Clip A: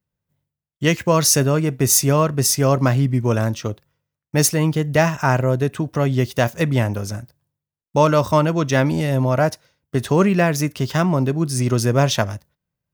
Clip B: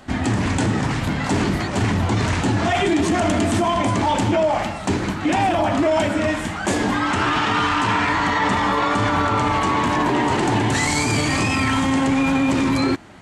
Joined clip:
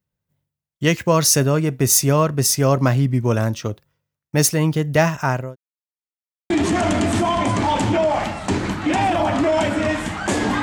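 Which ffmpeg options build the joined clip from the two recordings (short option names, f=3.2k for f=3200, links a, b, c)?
-filter_complex "[0:a]apad=whole_dur=10.62,atrim=end=10.62,asplit=2[a][b];[a]atrim=end=5.56,asetpts=PTS-STARTPTS,afade=t=out:st=5.03:d=0.53:c=qsin[c];[b]atrim=start=5.56:end=6.5,asetpts=PTS-STARTPTS,volume=0[d];[1:a]atrim=start=2.89:end=7.01,asetpts=PTS-STARTPTS,afade=t=in:d=0.004:c=hsin[e];[c][d][e]concat=n=3:v=0:a=1"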